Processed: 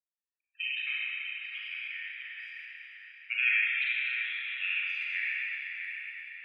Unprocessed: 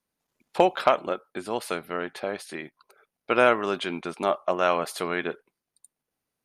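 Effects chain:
adaptive Wiener filter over 41 samples
low-pass filter 8,500 Hz 12 dB per octave
spectral peaks only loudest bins 64
Chebyshev high-pass with heavy ripple 1,800 Hz, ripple 3 dB
delay with a low-pass on its return 652 ms, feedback 40%, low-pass 3,400 Hz, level −7 dB
four-comb reverb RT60 3.2 s, combs from 30 ms, DRR −7.5 dB
level +3 dB

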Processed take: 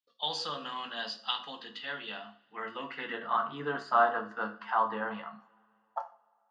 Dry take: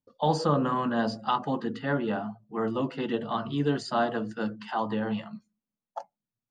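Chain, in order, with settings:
band-pass filter sweep 3,400 Hz → 1,200 Hz, 0:02.12–0:03.50
coupled-rooms reverb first 0.35 s, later 2.6 s, from −27 dB, DRR 5 dB
level +7 dB

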